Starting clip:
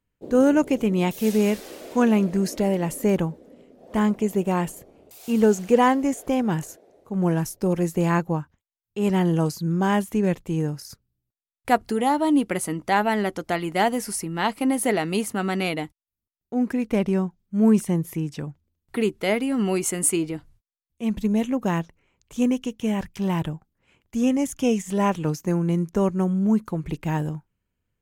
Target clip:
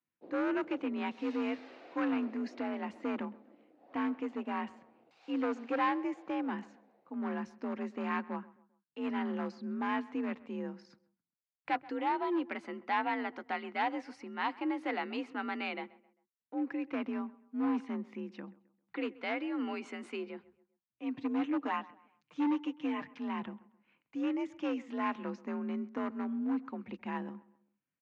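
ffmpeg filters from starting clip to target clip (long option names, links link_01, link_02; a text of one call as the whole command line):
ffmpeg -i in.wav -filter_complex "[0:a]afreqshift=49,asettb=1/sr,asplit=3[link_01][link_02][link_03];[link_01]atrim=end=21.164[link_04];[link_02]atrim=start=21.16:end=23.17,asetpts=PTS-STARTPTS,afade=type=in:duration=0.004:curve=qsin,afade=type=out:start_time=2.006:duration=0.004:curve=qsin,aecho=1:1:6.6:0.92,atrim=end_sample=88641[link_05];[link_03]atrim=start=23.166[link_06];[link_04][link_05]acrossfade=duration=0.004:curve1=hsin:curve2=qsin[link_07];[link_07][link_06]acrossfade=duration=0.004:curve1=qsin:curve2=hsin,asoftclip=type=hard:threshold=-15.5dB,highpass=290,equalizer=frequency=420:width_type=q:width=4:gain=-10,equalizer=frequency=610:width_type=q:width=4:gain=-8,equalizer=frequency=3300:width_type=q:width=4:gain=-7,lowpass=frequency=3600:width=0.5412,lowpass=frequency=3600:width=1.3066,asplit=2[link_08][link_09];[link_09]adelay=132,lowpass=frequency=2200:poles=1,volume=-20dB,asplit=2[link_10][link_11];[link_11]adelay=132,lowpass=frequency=2200:poles=1,volume=0.4,asplit=2[link_12][link_13];[link_13]adelay=132,lowpass=frequency=2200:poles=1,volume=0.4[link_14];[link_08][link_10][link_12][link_14]amix=inputs=4:normalize=0,volume=-7.5dB" out.wav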